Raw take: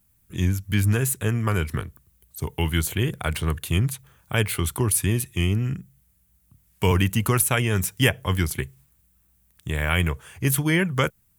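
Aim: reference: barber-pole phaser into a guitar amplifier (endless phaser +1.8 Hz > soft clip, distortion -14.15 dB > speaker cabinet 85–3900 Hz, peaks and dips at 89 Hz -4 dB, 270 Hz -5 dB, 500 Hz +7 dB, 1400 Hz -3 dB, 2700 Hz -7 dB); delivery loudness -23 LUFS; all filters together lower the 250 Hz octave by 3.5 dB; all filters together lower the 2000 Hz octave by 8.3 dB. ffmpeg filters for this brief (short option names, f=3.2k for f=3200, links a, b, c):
-filter_complex "[0:a]equalizer=f=250:t=o:g=-3.5,equalizer=f=2k:t=o:g=-7.5,asplit=2[a][b];[b]afreqshift=1.8[c];[a][c]amix=inputs=2:normalize=1,asoftclip=threshold=-21.5dB,highpass=85,equalizer=f=89:t=q:w=4:g=-4,equalizer=f=270:t=q:w=4:g=-5,equalizer=f=500:t=q:w=4:g=7,equalizer=f=1.4k:t=q:w=4:g=-3,equalizer=f=2.7k:t=q:w=4:g=-7,lowpass=f=3.9k:w=0.5412,lowpass=f=3.9k:w=1.3066,volume=10.5dB"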